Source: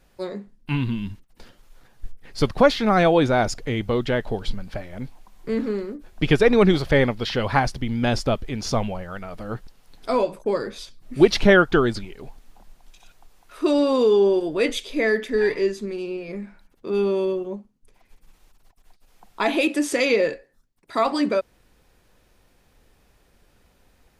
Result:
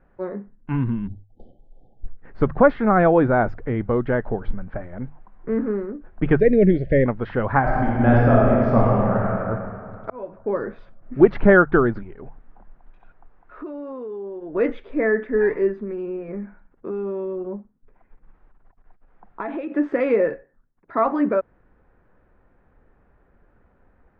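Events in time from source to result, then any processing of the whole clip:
0:01.07–0:02.07: time-frequency box erased 860–3,000 Hz
0:06.40–0:07.06: Chebyshev band-stop filter 610–1,900 Hz, order 3
0:07.60–0:09.34: thrown reverb, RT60 2.5 s, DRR −5.5 dB
0:10.10–0:10.64: fade in linear
0:12.02–0:14.55: downward compressor, threshold −33 dBFS
0:15.82–0:19.72: downward compressor, threshold −26 dBFS
whole clip: Chebyshev low-pass filter 1,600 Hz, order 3; mains-hum notches 50/100/150 Hz; level +2 dB

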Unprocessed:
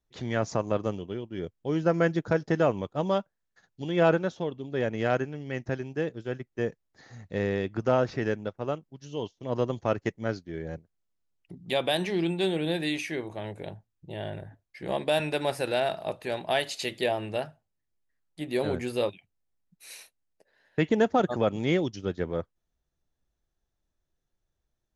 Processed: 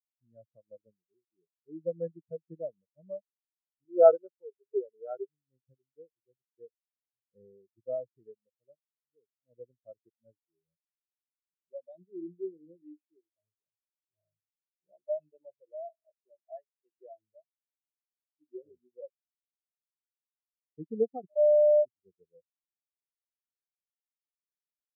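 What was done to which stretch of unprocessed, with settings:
0:03.85–0:05.29: loudspeaker in its box 120–6,300 Hz, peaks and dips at 180 Hz −3 dB, 260 Hz −8 dB, 410 Hz +8 dB, 850 Hz +5 dB, 1,300 Hz +9 dB, 2,700 Hz +5 dB
0:21.36–0:21.85: beep over 598 Hz −20 dBFS
whole clip: high-shelf EQ 3,900 Hz −8.5 dB; every bin expanded away from the loudest bin 4 to 1

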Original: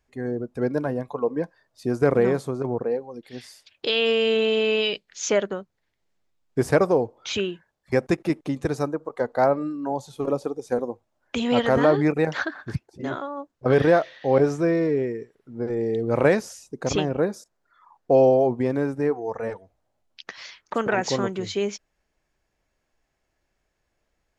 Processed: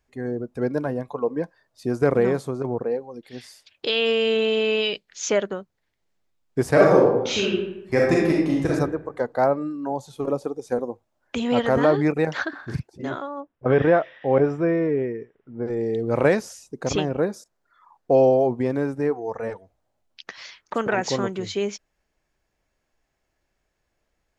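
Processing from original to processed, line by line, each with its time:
0:06.72–0:08.71: thrown reverb, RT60 0.86 s, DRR −4 dB
0:09.29–0:11.83: dynamic equaliser 3,700 Hz, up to −3 dB, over −42 dBFS, Q 0.74
0:12.49–0:12.89: double-tracking delay 42 ms −5 dB
0:13.40–0:15.66: Savitzky-Golay smoothing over 25 samples

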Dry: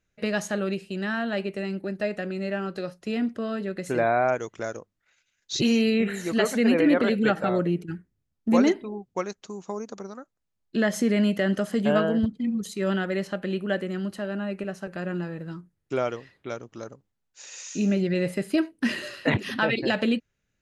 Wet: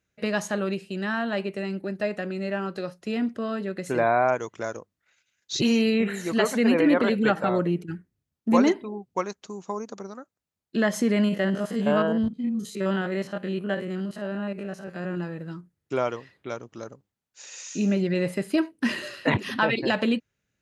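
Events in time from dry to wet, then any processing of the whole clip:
0:11.24–0:15.17: spectrum averaged block by block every 50 ms
whole clip: dynamic equaliser 1,000 Hz, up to +7 dB, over −47 dBFS, Q 3.5; high-pass filter 63 Hz

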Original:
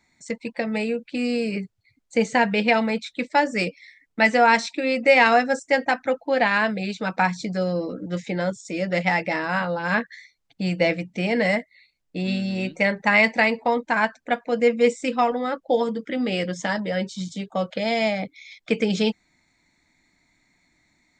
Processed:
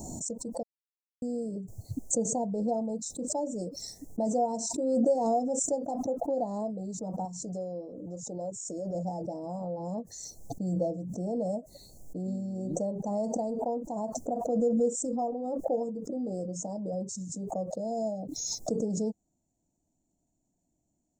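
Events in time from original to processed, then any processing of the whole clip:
0:00.63–0:01.22: silence
0:07.25–0:08.95: parametric band 190 Hz −8 dB 2.1 octaves
whole clip: elliptic band-stop filter 700–6,700 Hz, stop band 50 dB; background raised ahead of every attack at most 27 dB per second; level −8.5 dB

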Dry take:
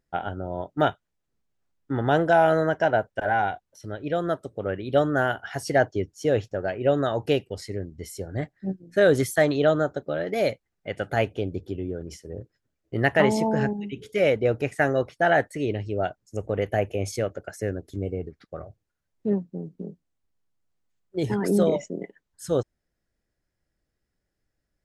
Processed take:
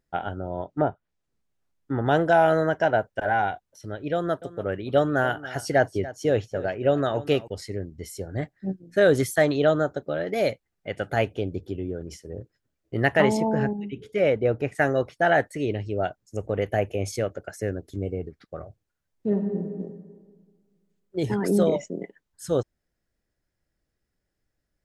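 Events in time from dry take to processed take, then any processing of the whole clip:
0:00.43–0:02.06: treble cut that deepens with the level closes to 800 Hz, closed at −19.5 dBFS
0:04.13–0:07.48: single-tap delay 287 ms −16.5 dB
0:13.37–0:14.75: high-shelf EQ 3,500 Hz −10.5 dB
0:19.27–0:19.68: thrown reverb, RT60 1.7 s, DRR 3 dB

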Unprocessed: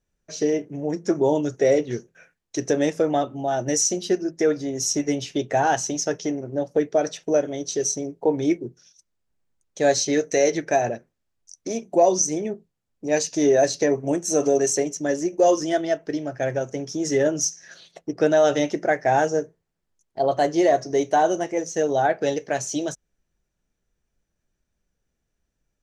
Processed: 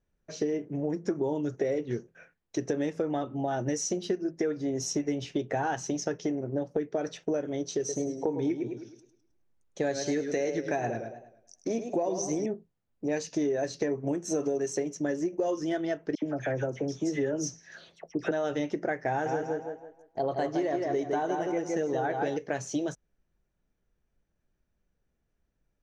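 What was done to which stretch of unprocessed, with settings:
0:07.78–0:12.46: feedback echo with a swinging delay time 105 ms, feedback 39%, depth 92 cents, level −9.5 dB
0:16.15–0:18.31: all-pass dispersion lows, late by 74 ms, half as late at 1,700 Hz
0:19.09–0:22.37: tape delay 164 ms, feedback 33%, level −3.5 dB, low-pass 4,600 Hz
whole clip: low-pass filter 2,000 Hz 6 dB per octave; dynamic equaliser 650 Hz, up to −6 dB, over −32 dBFS, Q 2.4; downward compressor, threshold −26 dBFS

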